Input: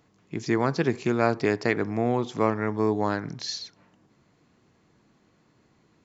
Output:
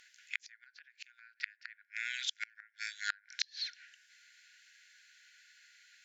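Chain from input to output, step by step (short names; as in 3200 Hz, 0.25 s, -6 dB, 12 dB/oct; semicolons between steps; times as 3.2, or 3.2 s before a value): brick-wall FIR high-pass 1400 Hz; treble ducked by the level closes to 2600 Hz, closed at -32.5 dBFS; flipped gate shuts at -29 dBFS, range -35 dB; gain +11 dB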